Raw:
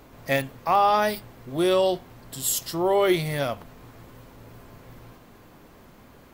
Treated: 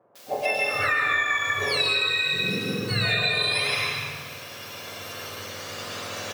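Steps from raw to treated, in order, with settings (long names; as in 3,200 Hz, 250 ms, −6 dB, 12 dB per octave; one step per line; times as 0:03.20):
frequency axis turned over on the octave scale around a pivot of 1,200 Hz
camcorder AGC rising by 5.5 dB per second
high-shelf EQ 5,300 Hz +5.5 dB
notch filter 640 Hz, Q 21
comb filter 1.8 ms, depth 30%
convolution reverb RT60 1.7 s, pre-delay 75 ms, DRR −4 dB
background noise violet −37 dBFS
pitch vibrato 0.38 Hz 20 cents
three-way crossover with the lows and the highs turned down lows −12 dB, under 420 Hz, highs −16 dB, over 5,500 Hz
three-band delay without the direct sound mids, highs, lows 150/470 ms, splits 180/960 Hz
downward compressor 12 to 1, threshold −22 dBFS, peak gain reduction 13 dB
level +2 dB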